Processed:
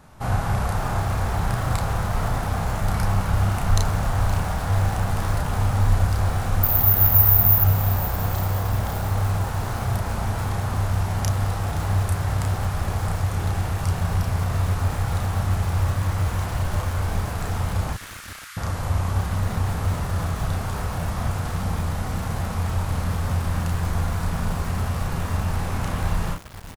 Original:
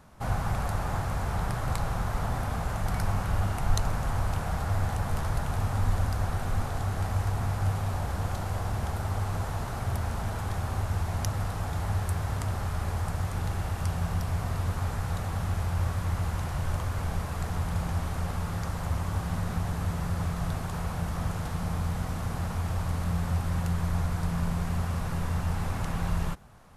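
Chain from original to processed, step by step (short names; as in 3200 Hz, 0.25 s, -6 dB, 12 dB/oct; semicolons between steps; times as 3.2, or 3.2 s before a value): 17.93–18.57 inverse Chebyshev high-pass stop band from 730 Hz, stop band 40 dB; on a send: early reflections 32 ms -3 dB, 42 ms -15.5 dB; 6.63–7.64 on the sum: careless resampling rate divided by 3×, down filtered, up zero stuff; lo-fi delay 0.52 s, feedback 55%, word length 5-bit, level -14 dB; gain +4 dB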